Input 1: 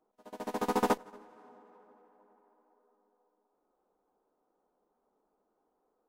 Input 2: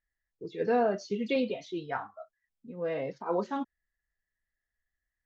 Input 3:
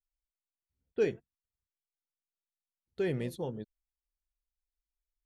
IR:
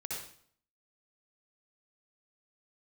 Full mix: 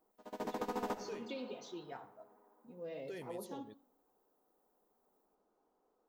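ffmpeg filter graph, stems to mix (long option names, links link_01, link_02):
-filter_complex "[0:a]equalizer=frequency=10000:width=2.8:gain=-9,volume=-1.5dB,asplit=2[link_01][link_02];[link_02]volume=-14dB[link_03];[1:a]equalizer=frequency=1400:width_type=o:width=1.6:gain=-13,volume=-7dB,asplit=2[link_04][link_05];[link_05]volume=-14.5dB[link_06];[2:a]adelay=100,volume=-9.5dB[link_07];[link_04][link_07]amix=inputs=2:normalize=0,aemphasis=mode=production:type=bsi,acompressor=threshold=-42dB:ratio=6,volume=0dB[link_08];[3:a]atrim=start_sample=2205[link_09];[link_03][link_06]amix=inputs=2:normalize=0[link_10];[link_10][link_09]afir=irnorm=-1:irlink=0[link_11];[link_01][link_08][link_11]amix=inputs=3:normalize=0,alimiter=level_in=4dB:limit=-24dB:level=0:latency=1:release=202,volume=-4dB"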